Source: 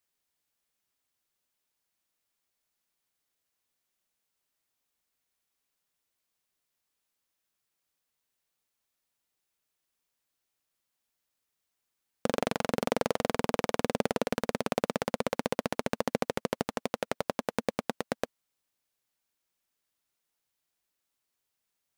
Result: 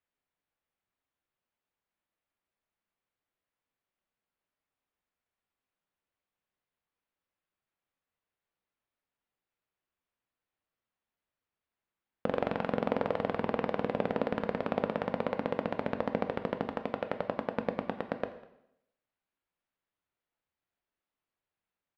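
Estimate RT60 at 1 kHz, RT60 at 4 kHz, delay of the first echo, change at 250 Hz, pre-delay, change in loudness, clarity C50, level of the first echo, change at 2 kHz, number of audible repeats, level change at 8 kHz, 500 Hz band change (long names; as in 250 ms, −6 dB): 0.80 s, 0.70 s, 199 ms, −1.0 dB, 5 ms, −1.5 dB, 11.5 dB, −23.0 dB, −3.5 dB, 1, below −25 dB, −1.0 dB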